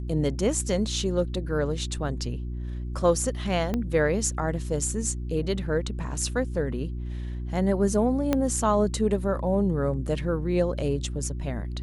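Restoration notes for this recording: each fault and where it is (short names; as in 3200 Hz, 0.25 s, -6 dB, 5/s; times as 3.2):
hum 60 Hz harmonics 6 -32 dBFS
3.74 pop -15 dBFS
8.33 pop -10 dBFS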